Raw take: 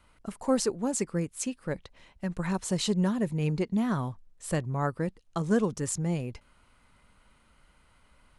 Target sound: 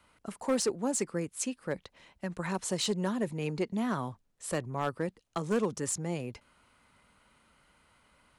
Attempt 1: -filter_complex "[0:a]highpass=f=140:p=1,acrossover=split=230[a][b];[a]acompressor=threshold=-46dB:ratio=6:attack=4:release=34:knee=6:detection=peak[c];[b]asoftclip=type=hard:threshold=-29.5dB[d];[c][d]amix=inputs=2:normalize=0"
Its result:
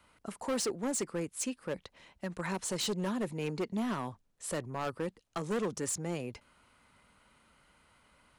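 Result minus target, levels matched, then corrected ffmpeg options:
hard clip: distortion +8 dB; compressor: peak gain reduction +5 dB
-filter_complex "[0:a]highpass=f=140:p=1,acrossover=split=230[a][b];[a]acompressor=threshold=-40dB:ratio=6:attack=4:release=34:knee=6:detection=peak[c];[b]asoftclip=type=hard:threshold=-23dB[d];[c][d]amix=inputs=2:normalize=0"

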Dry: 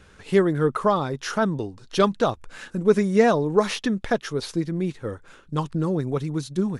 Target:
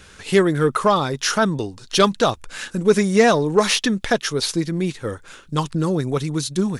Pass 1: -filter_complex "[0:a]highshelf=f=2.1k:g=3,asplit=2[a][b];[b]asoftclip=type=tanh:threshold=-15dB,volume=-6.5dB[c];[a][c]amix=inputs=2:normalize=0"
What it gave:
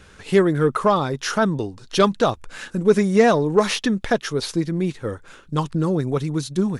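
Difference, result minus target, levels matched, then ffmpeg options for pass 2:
4000 Hz band -4.5 dB
-filter_complex "[0:a]highshelf=f=2.1k:g=10.5,asplit=2[a][b];[b]asoftclip=type=tanh:threshold=-15dB,volume=-6.5dB[c];[a][c]amix=inputs=2:normalize=0"

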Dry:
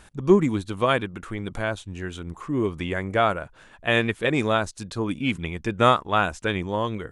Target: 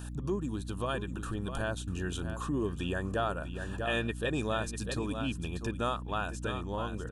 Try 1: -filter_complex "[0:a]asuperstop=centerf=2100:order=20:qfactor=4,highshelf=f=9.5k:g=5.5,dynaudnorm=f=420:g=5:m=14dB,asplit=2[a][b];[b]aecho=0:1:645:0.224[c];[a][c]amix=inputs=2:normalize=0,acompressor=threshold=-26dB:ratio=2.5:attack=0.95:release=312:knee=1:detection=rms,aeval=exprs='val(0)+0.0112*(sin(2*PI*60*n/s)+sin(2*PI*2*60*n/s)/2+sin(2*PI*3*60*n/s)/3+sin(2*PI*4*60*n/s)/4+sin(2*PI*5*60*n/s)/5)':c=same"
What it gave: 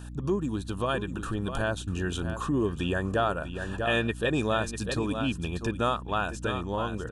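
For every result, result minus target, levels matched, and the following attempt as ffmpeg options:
compressor: peak gain reduction -5.5 dB; 8000 Hz band -2.5 dB
-filter_complex "[0:a]asuperstop=centerf=2100:order=20:qfactor=4,highshelf=f=9.5k:g=5.5,dynaudnorm=f=420:g=5:m=14dB,asplit=2[a][b];[b]aecho=0:1:645:0.224[c];[a][c]amix=inputs=2:normalize=0,acompressor=threshold=-35dB:ratio=2.5:attack=0.95:release=312:knee=1:detection=rms,aeval=exprs='val(0)+0.0112*(sin(2*PI*60*n/s)+sin(2*PI*2*60*n/s)/2+sin(2*PI*3*60*n/s)/3+sin(2*PI*4*60*n/s)/4+sin(2*PI*5*60*n/s)/5)':c=same"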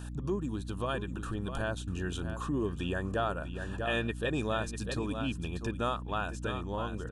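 8000 Hz band -3.0 dB
-filter_complex "[0:a]asuperstop=centerf=2100:order=20:qfactor=4,highshelf=f=9.5k:g=13.5,dynaudnorm=f=420:g=5:m=14dB,asplit=2[a][b];[b]aecho=0:1:645:0.224[c];[a][c]amix=inputs=2:normalize=0,acompressor=threshold=-35dB:ratio=2.5:attack=0.95:release=312:knee=1:detection=rms,aeval=exprs='val(0)+0.0112*(sin(2*PI*60*n/s)+sin(2*PI*2*60*n/s)/2+sin(2*PI*3*60*n/s)/3+sin(2*PI*4*60*n/s)/4+sin(2*PI*5*60*n/s)/5)':c=same"

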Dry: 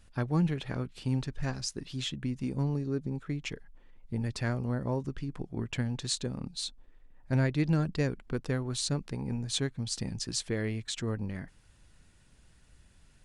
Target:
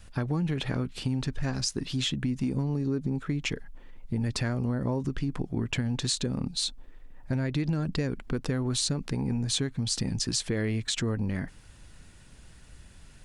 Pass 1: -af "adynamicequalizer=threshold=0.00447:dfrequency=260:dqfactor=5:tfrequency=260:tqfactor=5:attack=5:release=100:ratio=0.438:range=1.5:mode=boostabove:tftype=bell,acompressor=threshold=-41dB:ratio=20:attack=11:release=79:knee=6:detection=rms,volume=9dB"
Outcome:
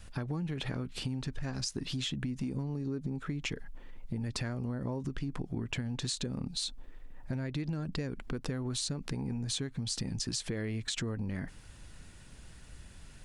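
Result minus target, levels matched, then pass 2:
compressor: peak gain reduction +7 dB
-af "adynamicequalizer=threshold=0.00447:dfrequency=260:dqfactor=5:tfrequency=260:tqfactor=5:attack=5:release=100:ratio=0.438:range=1.5:mode=boostabove:tftype=bell,acompressor=threshold=-33.5dB:ratio=20:attack=11:release=79:knee=6:detection=rms,volume=9dB"

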